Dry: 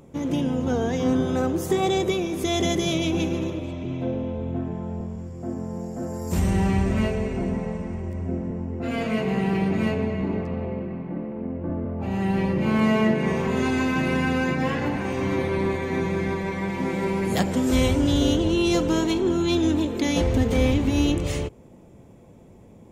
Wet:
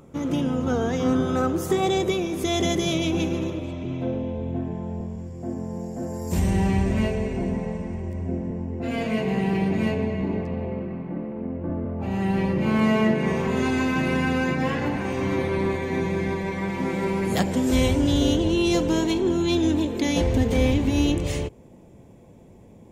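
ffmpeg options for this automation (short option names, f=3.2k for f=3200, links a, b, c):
-af "asetnsamples=n=441:p=0,asendcmd='1.75 equalizer g 1;4.18 equalizer g -9;10.72 equalizer g -0.5;15.79 equalizer g -7;16.58 equalizer g 1;17.42 equalizer g -6',equalizer=f=1.3k:t=o:w=0.24:g=9"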